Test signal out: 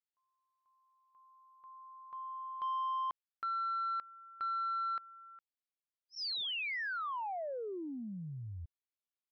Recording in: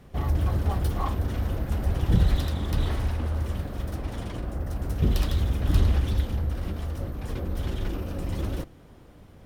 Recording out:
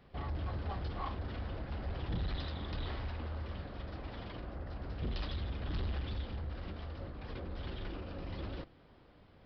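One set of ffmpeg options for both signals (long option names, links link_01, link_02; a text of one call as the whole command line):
ffmpeg -i in.wav -af "lowshelf=frequency=410:gain=-7,aresample=11025,asoftclip=type=tanh:threshold=-25dB,aresample=44100,volume=-5.5dB" out.wav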